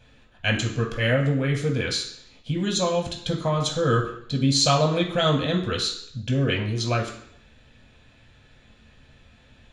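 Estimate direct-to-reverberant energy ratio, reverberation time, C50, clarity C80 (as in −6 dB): −0.5 dB, 0.70 s, 7.5 dB, 10.5 dB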